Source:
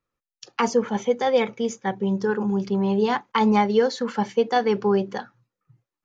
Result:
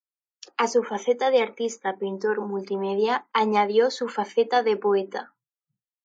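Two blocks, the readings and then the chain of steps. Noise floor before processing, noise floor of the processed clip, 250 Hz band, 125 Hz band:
under -85 dBFS, under -85 dBFS, -8.0 dB, under -10 dB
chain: HPF 270 Hz 24 dB/oct; spectral noise reduction 29 dB; downsampling 22050 Hz

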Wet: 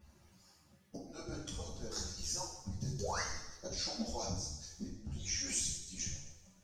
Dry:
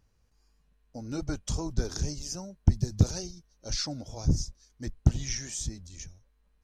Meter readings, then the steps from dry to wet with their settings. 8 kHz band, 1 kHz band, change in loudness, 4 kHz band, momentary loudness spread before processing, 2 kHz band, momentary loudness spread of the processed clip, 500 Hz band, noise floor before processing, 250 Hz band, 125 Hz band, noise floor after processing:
-1.5 dB, +1.5 dB, -8.5 dB, -3.0 dB, 16 LU, 0.0 dB, 12 LU, -5.0 dB, -68 dBFS, -11.0 dB, -15.5 dB, -66 dBFS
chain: median-filter separation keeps percussive; auto swell 0.556 s; compressor 2.5:1, threshold -54 dBFS, peak gain reduction 14.5 dB; painted sound rise, 3–3.21, 370–2200 Hz -53 dBFS; two-slope reverb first 0.8 s, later 2 s, from -18 dB, DRR -3 dB; ensemble effect; gain +13.5 dB

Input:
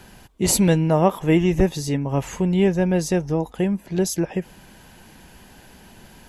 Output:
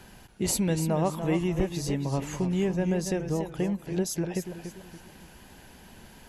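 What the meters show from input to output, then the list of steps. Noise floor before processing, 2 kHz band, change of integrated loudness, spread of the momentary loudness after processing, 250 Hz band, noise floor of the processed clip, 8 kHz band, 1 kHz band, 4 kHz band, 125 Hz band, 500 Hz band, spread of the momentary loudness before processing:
-48 dBFS, -8.0 dB, -8.0 dB, 14 LU, -7.5 dB, -51 dBFS, -7.0 dB, -8.5 dB, -7.0 dB, -7.0 dB, -8.0 dB, 8 LU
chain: compressor 2:1, threshold -23 dBFS, peak gain reduction 7 dB; warbling echo 0.287 s, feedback 37%, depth 122 cents, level -9 dB; gain -4 dB

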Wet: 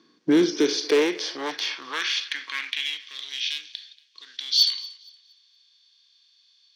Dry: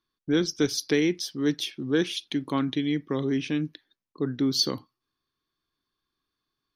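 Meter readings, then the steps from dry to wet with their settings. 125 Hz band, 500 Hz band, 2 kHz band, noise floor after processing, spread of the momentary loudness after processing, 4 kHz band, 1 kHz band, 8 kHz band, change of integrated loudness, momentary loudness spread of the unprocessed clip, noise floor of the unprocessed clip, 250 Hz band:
under -10 dB, +3.0 dB, +5.5 dB, -62 dBFS, 15 LU, +7.0 dB, +3.0 dB, +1.0 dB, +3.0 dB, 7 LU, -85 dBFS, -1.5 dB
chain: per-bin compression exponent 0.6; LPF 6800 Hz 24 dB/oct; gate -48 dBFS, range -10 dB; HPF 100 Hz 24 dB/oct; dynamic EQ 2500 Hz, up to +6 dB, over -42 dBFS, Q 0.76; harmonic-percussive split percussive -11 dB; in parallel at +1.5 dB: compressor 6:1, threshold -34 dBFS, peak gain reduction 15.5 dB; on the sum: hard clip -17.5 dBFS, distortion -15 dB; high-pass sweep 220 Hz -> 3500 Hz, 0.18–3.12; on a send: thinning echo 0.233 s, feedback 32%, high-pass 420 Hz, level -21.5 dB

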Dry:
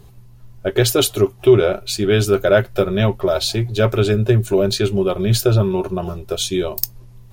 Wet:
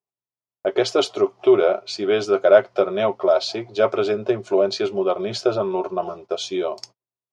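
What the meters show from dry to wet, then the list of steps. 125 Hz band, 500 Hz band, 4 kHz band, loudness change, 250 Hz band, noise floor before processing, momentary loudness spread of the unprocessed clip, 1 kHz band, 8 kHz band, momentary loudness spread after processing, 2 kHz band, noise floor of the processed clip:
-21.0 dB, -1.0 dB, -6.0 dB, -3.0 dB, -6.0 dB, -44 dBFS, 8 LU, +1.5 dB, under -10 dB, 11 LU, -4.5 dB, under -85 dBFS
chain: speaker cabinet 400–5100 Hz, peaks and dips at 680 Hz +5 dB, 1100 Hz +3 dB, 1700 Hz -8 dB, 2700 Hz -6 dB, 3800 Hz -8 dB; gate -41 dBFS, range -41 dB

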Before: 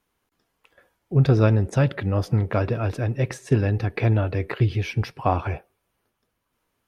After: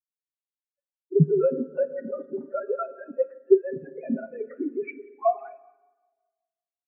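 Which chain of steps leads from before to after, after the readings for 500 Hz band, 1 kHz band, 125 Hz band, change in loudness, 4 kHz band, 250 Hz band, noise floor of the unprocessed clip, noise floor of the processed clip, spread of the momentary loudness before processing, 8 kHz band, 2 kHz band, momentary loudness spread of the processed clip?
+2.5 dB, -3.5 dB, -13.0 dB, -4.0 dB, under -40 dB, -3.5 dB, -76 dBFS, under -85 dBFS, 8 LU, n/a, -13.0 dB, 13 LU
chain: sine-wave speech; high shelf 2200 Hz -11 dB; comb 7.4 ms, depth 68%; dynamic EQ 1500 Hz, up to +4 dB, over -32 dBFS, Q 1; compressor 3:1, threshold -19 dBFS, peak gain reduction 10.5 dB; spring tank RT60 3.3 s, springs 39/54 ms, chirp 20 ms, DRR 3.5 dB; spectral expander 2.5:1; gain +2.5 dB

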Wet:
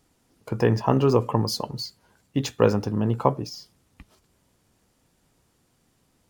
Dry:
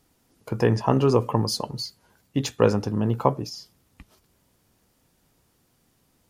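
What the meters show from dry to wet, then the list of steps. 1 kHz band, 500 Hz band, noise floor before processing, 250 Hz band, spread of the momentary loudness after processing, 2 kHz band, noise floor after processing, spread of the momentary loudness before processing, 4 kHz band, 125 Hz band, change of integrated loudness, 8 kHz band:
0.0 dB, 0.0 dB, -67 dBFS, 0.0 dB, 14 LU, 0.0 dB, -68 dBFS, 14 LU, -1.0 dB, 0.0 dB, 0.0 dB, -2.0 dB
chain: decimation joined by straight lines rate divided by 2×

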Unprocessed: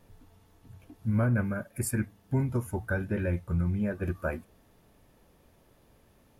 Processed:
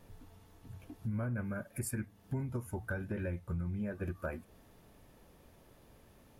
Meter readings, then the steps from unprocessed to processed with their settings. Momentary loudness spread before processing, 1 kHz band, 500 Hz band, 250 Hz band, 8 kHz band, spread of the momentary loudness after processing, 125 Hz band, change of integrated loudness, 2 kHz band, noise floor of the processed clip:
7 LU, -8.0 dB, -8.0 dB, -8.5 dB, -6.5 dB, 16 LU, -8.5 dB, -8.5 dB, -7.5 dB, -62 dBFS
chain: compressor 3:1, threshold -38 dBFS, peak gain reduction 12 dB; hard clip -28 dBFS, distortion -40 dB; gain +1 dB

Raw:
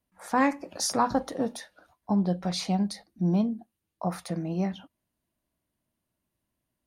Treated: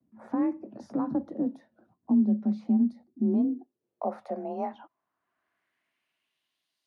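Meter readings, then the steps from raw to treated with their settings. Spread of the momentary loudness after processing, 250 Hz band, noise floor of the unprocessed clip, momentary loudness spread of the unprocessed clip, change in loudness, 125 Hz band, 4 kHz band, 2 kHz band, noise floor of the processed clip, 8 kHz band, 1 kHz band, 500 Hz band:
10 LU, +2.0 dB, -84 dBFS, 9 LU, -0.5 dB, n/a, under -25 dB, under -15 dB, -84 dBFS, under -30 dB, -8.5 dB, -3.0 dB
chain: frequency shift +33 Hz; band-pass sweep 220 Hz -> 4400 Hz, 2.94–6.82; three-band squash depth 40%; gain +5 dB

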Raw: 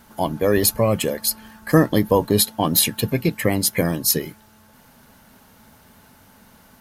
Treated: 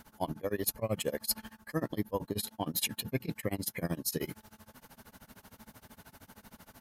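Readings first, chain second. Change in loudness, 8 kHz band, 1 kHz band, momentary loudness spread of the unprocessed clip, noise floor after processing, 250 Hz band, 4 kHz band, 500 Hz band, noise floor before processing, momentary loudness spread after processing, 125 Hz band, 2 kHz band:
-15.5 dB, -15.5 dB, -15.5 dB, 6 LU, -69 dBFS, -16.0 dB, -14.5 dB, -16.0 dB, -52 dBFS, 22 LU, -15.5 dB, -14.5 dB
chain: reverse; compressor 6:1, threshold -27 dBFS, peak gain reduction 17 dB; reverse; tremolo 13 Hz, depth 96%

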